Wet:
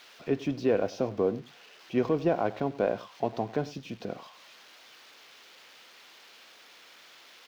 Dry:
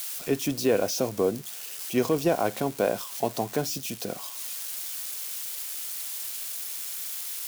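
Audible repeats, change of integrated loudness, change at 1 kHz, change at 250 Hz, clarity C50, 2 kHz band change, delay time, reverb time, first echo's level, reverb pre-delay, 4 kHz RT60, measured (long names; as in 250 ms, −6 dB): 1, −1.5 dB, −2.5 dB, −2.0 dB, no reverb audible, −4.5 dB, 99 ms, no reverb audible, −19.0 dB, no reverb audible, no reverb audible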